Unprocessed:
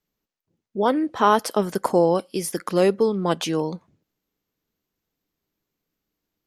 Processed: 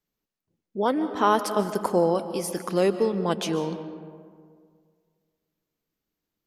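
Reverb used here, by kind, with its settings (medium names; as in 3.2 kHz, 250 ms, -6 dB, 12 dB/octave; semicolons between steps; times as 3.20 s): algorithmic reverb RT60 2 s, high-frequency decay 0.45×, pre-delay 100 ms, DRR 10 dB; trim -3.5 dB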